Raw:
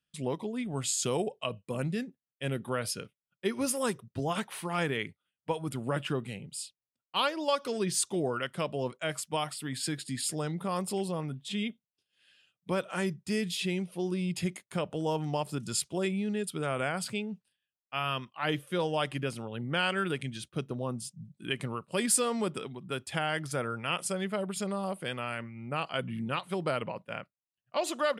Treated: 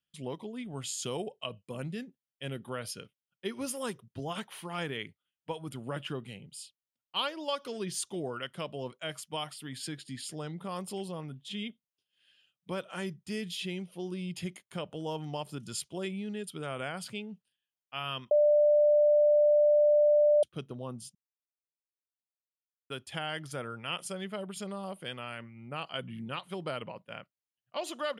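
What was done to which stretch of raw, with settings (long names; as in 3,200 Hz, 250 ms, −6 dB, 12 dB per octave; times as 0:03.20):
0:09.87–0:10.64: high-shelf EQ 9,100 Hz −8 dB
0:18.31–0:20.43: beep over 593 Hz −14 dBFS
0:21.15–0:22.90: silence
whole clip: parametric band 3,100 Hz +6.5 dB 0.21 octaves; notch filter 7,900 Hz, Q 12; level −5.5 dB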